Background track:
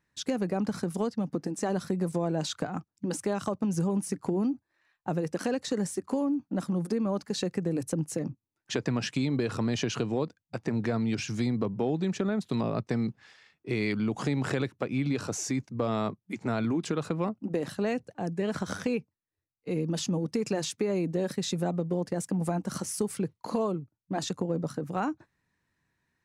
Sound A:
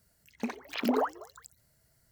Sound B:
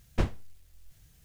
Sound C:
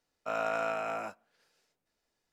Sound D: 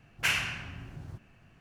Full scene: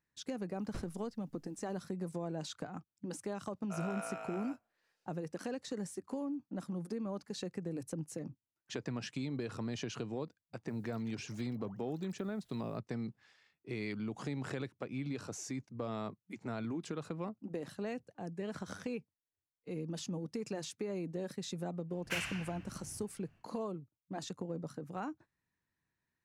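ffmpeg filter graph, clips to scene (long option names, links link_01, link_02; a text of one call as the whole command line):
ffmpeg -i bed.wav -i cue0.wav -i cue1.wav -i cue2.wav -i cue3.wav -filter_complex "[0:a]volume=-10.5dB[link_01];[1:a]acompressor=threshold=-52dB:ratio=6:attack=3.2:release=140:knee=1:detection=peak[link_02];[2:a]atrim=end=1.24,asetpts=PTS-STARTPTS,volume=-17.5dB,afade=type=in:duration=0.004:curve=hsin,afade=type=out:start_time=1.236:duration=0.004:curve=hsin,adelay=560[link_03];[3:a]atrim=end=2.32,asetpts=PTS-STARTPTS,volume=-11dB,afade=type=in:duration=0.004:curve=hsin,afade=type=out:start_time=2.316:duration=0.004:curve=hsin,adelay=3440[link_04];[link_02]atrim=end=2.11,asetpts=PTS-STARTPTS,volume=-7dB,afade=type=in:duration=0.004:curve=hsin,afade=type=out:start_time=2.106:duration=0.004:curve=hsin,adelay=10670[link_05];[4:a]atrim=end=1.6,asetpts=PTS-STARTPTS,volume=-10dB,afade=type=in:duration=0.1,afade=type=out:start_time=1.5:duration=0.1,adelay=21870[link_06];[link_01][link_03][link_04][link_05][link_06]amix=inputs=5:normalize=0" out.wav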